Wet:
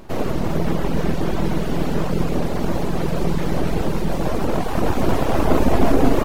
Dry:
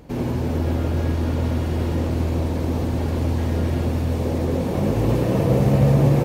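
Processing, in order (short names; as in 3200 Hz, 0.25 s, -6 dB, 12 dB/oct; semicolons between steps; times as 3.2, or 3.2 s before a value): full-wave rectifier; reverb removal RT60 0.61 s; gain +5.5 dB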